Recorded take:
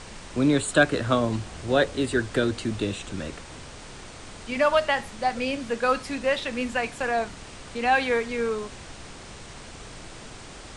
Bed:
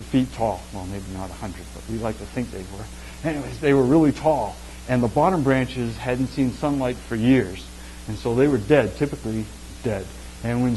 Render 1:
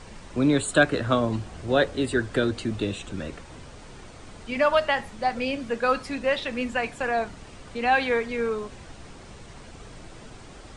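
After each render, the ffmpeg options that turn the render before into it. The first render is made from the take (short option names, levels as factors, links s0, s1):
-af "afftdn=nr=7:nf=-43"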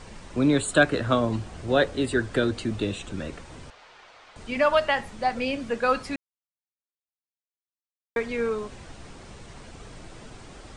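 -filter_complex "[0:a]asettb=1/sr,asplit=3[s0][s1][s2];[s0]atrim=end=3.704[s3];[s1]atrim=start=3.7:end=4.36,asetpts=PTS-STARTPTS,afade=t=in:d=0.004:c=qsin,afade=t=out:st=0.656:d=0.004:c=qsin,acrossover=split=570 5200:gain=0.0631 1 0.0794[s4][s5][s6];[s4][s5][s6]amix=inputs=3:normalize=0[s7];[s2]atrim=start=4.356[s8];[s3][s7]acrossfade=d=0.004:c1=hsin:c2=qsin[s9];[s9][s8]acrossfade=d=0.004:c1=qsin:c2=hsin,asplit=3[s10][s11][s12];[s10]atrim=end=6.16,asetpts=PTS-STARTPTS,afade=t=out:st=6.156:d=0.004:c=hsin[s13];[s11]atrim=start=6.16:end=8.16,asetpts=PTS-STARTPTS,volume=0[s14];[s12]atrim=start=8.16,asetpts=PTS-STARTPTS,afade=t=in:d=0.004:c=hsin[s15];[s13][s14][s15]concat=n=3:v=0:a=1"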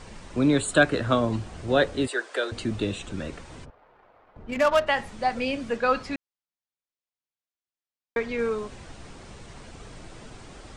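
-filter_complex "[0:a]asettb=1/sr,asplit=3[s0][s1][s2];[s0]atrim=end=2.074[s3];[s1]atrim=start=2.07:end=2.52,asetpts=PTS-STARTPTS,afade=t=in:d=0.004:c=qsin,afade=t=out:st=0.446:d=0.004:c=qsin,highpass=f=460:w=0.5412,highpass=f=460:w=1.3066[s4];[s2]atrim=start=2.516[s5];[s3][s4]acrossfade=d=0.004:c1=hsin:c2=qsin[s6];[s6][s5]acrossfade=d=0.004:c1=qsin:c2=hsin,asplit=3[s7][s8][s9];[s7]afade=t=out:st=3.64:d=0.02[s10];[s8]adynamicsmooth=sensitivity=3:basefreq=870,afade=t=in:st=3.64:d=0.02,afade=t=out:st=4.86:d=0.02[s11];[s9]afade=t=in:st=4.86:d=0.02[s12];[s10][s11][s12]amix=inputs=3:normalize=0,asettb=1/sr,asplit=3[s13][s14][s15];[s13]atrim=end=5.774[s16];[s14]atrim=start=5.77:end=8.39,asetpts=PTS-STARTPTS,afade=t=in:d=0.004:c=qsin,afade=t=out:st=2.616:d=0.004:c=qsin,lowpass=6400[s17];[s15]atrim=start=8.386[s18];[s16][s17]acrossfade=d=0.004:c1=hsin:c2=qsin[s19];[s19][s18]acrossfade=d=0.004:c1=qsin:c2=hsin"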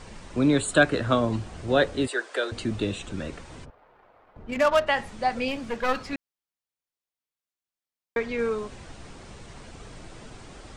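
-filter_complex "[0:a]asettb=1/sr,asplit=3[s0][s1][s2];[s0]atrim=end=5.484[s3];[s1]atrim=start=5.48:end=6.13,asetpts=PTS-STARTPTS,afade=t=in:d=0.004:c=qsin,afade=t=out:st=0.646:d=0.004:c=qsin,aeval=exprs='clip(val(0),-1,0.0188)':c=same[s4];[s2]atrim=start=6.126[s5];[s3][s4]acrossfade=d=0.004:c1=hsin:c2=qsin[s6];[s6][s5]acrossfade=d=0.004:c1=qsin:c2=hsin"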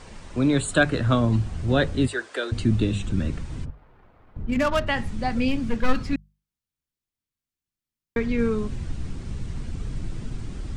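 -af "bandreject=f=50:t=h:w=6,bandreject=f=100:t=h:w=6,bandreject=f=150:t=h:w=6,bandreject=f=200:t=h:w=6,asubboost=boost=7:cutoff=230"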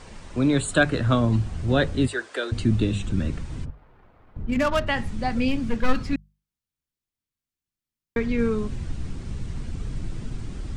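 -af anull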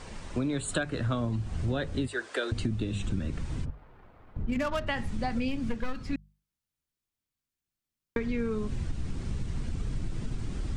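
-af "acompressor=threshold=0.0501:ratio=12"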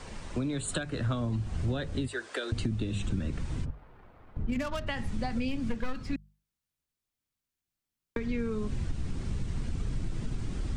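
-filter_complex "[0:a]acrossover=split=210|3000[s0][s1][s2];[s1]acompressor=threshold=0.0251:ratio=6[s3];[s0][s3][s2]amix=inputs=3:normalize=0"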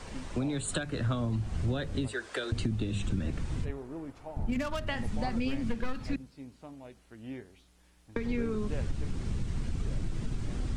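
-filter_complex "[1:a]volume=0.0562[s0];[0:a][s0]amix=inputs=2:normalize=0"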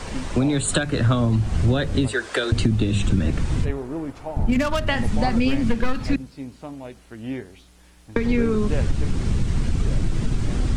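-af "volume=3.76"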